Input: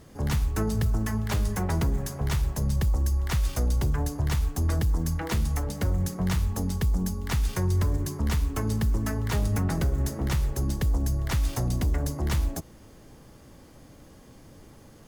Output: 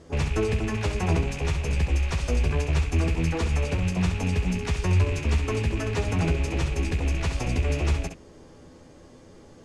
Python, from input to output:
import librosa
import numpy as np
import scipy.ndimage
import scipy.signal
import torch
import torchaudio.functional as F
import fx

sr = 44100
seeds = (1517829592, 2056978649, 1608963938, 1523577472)

y = fx.rattle_buzz(x, sr, strikes_db=-35.0, level_db=-24.0)
y = scipy.signal.sosfilt(scipy.signal.butter(4, 8500.0, 'lowpass', fs=sr, output='sos'), y)
y = fx.peak_eq(y, sr, hz=440.0, db=5.5, octaves=1.1)
y = fx.hum_notches(y, sr, base_hz=50, count=4)
y = fx.stretch_vocoder(y, sr, factor=0.64)
y = fx.room_early_taps(y, sr, ms=(12, 67), db=(-5.5, -7.5))